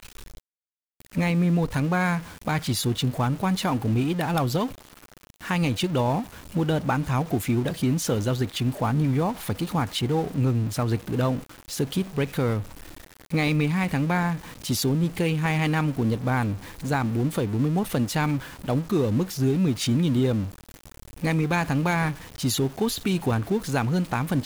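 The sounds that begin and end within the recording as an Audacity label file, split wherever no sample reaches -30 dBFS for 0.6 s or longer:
1.160000	4.670000	sound
5.470000	12.620000	sound
13.330000	20.480000	sound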